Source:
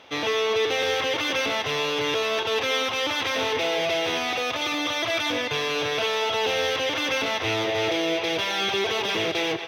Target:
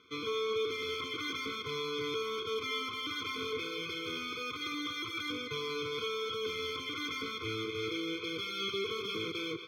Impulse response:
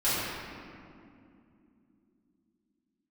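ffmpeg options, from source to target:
-af "bandreject=f=5800:w=13,afftfilt=real='re*eq(mod(floor(b*sr/1024/510),2),0)':imag='im*eq(mod(floor(b*sr/1024/510),2),0)':win_size=1024:overlap=0.75,volume=0.355"

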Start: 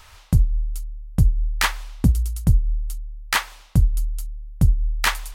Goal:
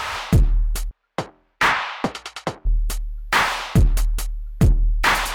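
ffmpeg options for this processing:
-filter_complex "[0:a]asplit=3[s0][s1][s2];[s0]afade=t=out:st=0.89:d=0.02[s3];[s1]highpass=730,lowpass=3200,afade=t=in:st=0.89:d=0.02,afade=t=out:st=2.65:d=0.02[s4];[s2]afade=t=in:st=2.65:d=0.02[s5];[s3][s4][s5]amix=inputs=3:normalize=0,asplit=2[s6][s7];[s7]highpass=f=720:p=1,volume=63.1,asoftclip=type=tanh:threshold=0.531[s8];[s6][s8]amix=inputs=2:normalize=0,lowpass=f=1400:p=1,volume=0.501"

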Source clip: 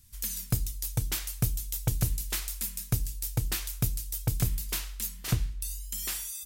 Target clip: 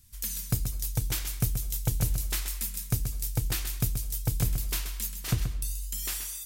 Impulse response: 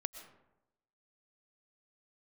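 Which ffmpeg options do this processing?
-filter_complex "[0:a]asplit=2[s0][s1];[1:a]atrim=start_sample=2205,asetrate=74970,aresample=44100,adelay=130[s2];[s1][s2]afir=irnorm=-1:irlink=0,volume=0.708[s3];[s0][s3]amix=inputs=2:normalize=0"

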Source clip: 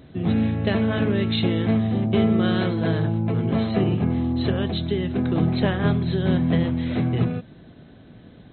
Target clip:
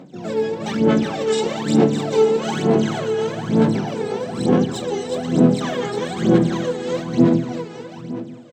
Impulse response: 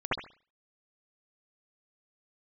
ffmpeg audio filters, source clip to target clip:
-filter_complex "[0:a]equalizer=f=640:t=o:w=0.48:g=-4.5,asplit=2[s0][s1];[s1]aecho=0:1:751:0.0944[s2];[s0][s2]amix=inputs=2:normalize=0,asplit=3[s3][s4][s5];[s4]asetrate=58866,aresample=44100,atempo=0.749154,volume=0.501[s6];[s5]asetrate=88200,aresample=44100,atempo=0.5,volume=0.891[s7];[s3][s6][s7]amix=inputs=3:normalize=0,highpass=f=150:w=0.5412,highpass=f=150:w=1.3066,aecho=1:1:360|612|788.4|911.9|998.3:0.631|0.398|0.251|0.158|0.1,aphaser=in_gain=1:out_gain=1:delay=2.4:decay=0.76:speed=1.1:type=sinusoidal,asplit=2[s8][s9];[1:a]atrim=start_sample=2205,adelay=120[s10];[s9][s10]afir=irnorm=-1:irlink=0,volume=0.0631[s11];[s8][s11]amix=inputs=2:normalize=0,volume=0.422"

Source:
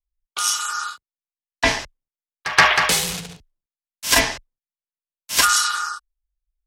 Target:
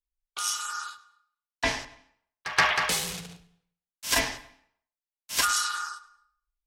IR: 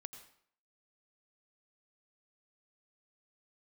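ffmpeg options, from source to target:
-filter_complex "[0:a]asplit=2[s0][s1];[1:a]atrim=start_sample=2205,highshelf=f=4400:g=-7,adelay=103[s2];[s1][s2]afir=irnorm=-1:irlink=0,volume=0.316[s3];[s0][s3]amix=inputs=2:normalize=0,volume=0.376"

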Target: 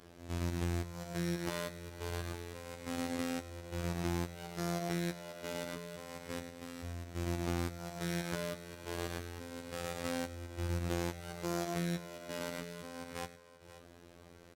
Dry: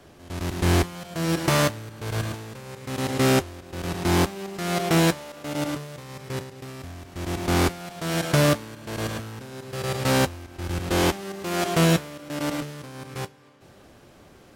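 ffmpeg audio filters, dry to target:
-af "acompressor=threshold=0.0398:ratio=12,afftfilt=real='hypot(re,im)*cos(PI*b)':imag='0':win_size=2048:overlap=0.75,aecho=1:1:104|532:0.15|0.168,volume=0.668"

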